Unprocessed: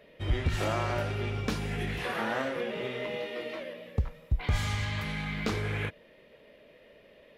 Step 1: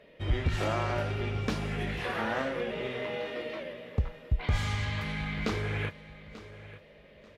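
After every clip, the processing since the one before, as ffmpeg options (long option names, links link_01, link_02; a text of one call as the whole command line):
ffmpeg -i in.wav -af "highshelf=frequency=9400:gain=-10,aecho=1:1:888|1776|2664:0.158|0.0428|0.0116" out.wav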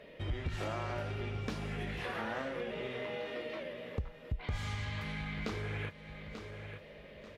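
ffmpeg -i in.wav -af "acompressor=threshold=-46dB:ratio=2,volume=3dB" out.wav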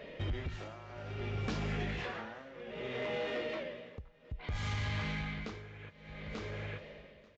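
ffmpeg -i in.wav -af "tremolo=f=0.61:d=0.87,aresample=16000,asoftclip=type=tanh:threshold=-34.5dB,aresample=44100,volume=5.5dB" out.wav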